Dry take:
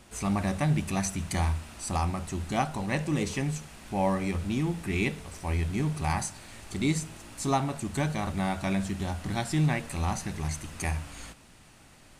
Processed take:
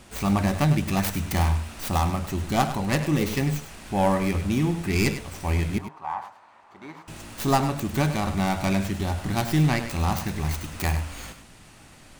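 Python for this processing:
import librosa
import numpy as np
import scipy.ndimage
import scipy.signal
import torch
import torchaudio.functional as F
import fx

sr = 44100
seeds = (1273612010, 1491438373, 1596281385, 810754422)

y = fx.tracing_dist(x, sr, depth_ms=0.32)
y = fx.bandpass_q(y, sr, hz=970.0, q=3.5, at=(5.78, 7.08))
y = y + 10.0 ** (-11.0 / 20.0) * np.pad(y, (int(101 * sr / 1000.0), 0))[:len(y)]
y = y * 10.0 ** (5.0 / 20.0)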